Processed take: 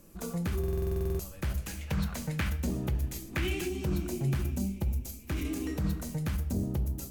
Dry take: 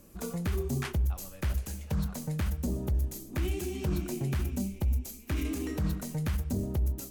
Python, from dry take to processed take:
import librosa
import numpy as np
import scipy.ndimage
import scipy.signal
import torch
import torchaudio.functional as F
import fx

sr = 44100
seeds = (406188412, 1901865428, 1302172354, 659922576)

y = fx.peak_eq(x, sr, hz=2200.0, db=10.0, octaves=1.9, at=(1.66, 3.68))
y = fx.room_shoebox(y, sr, seeds[0], volume_m3=880.0, walls='furnished', distance_m=0.75)
y = fx.buffer_glitch(y, sr, at_s=(0.59,), block=2048, repeats=12)
y = y * 10.0 ** (-1.0 / 20.0)